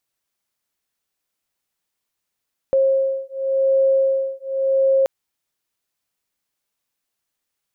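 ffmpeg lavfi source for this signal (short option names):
-f lavfi -i "aevalsrc='0.119*(sin(2*PI*537*t)+sin(2*PI*537.9*t))':d=2.33:s=44100"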